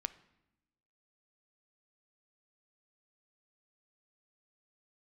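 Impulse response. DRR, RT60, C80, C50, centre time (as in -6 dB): 13.5 dB, 0.95 s, 19.5 dB, 16.5 dB, 4 ms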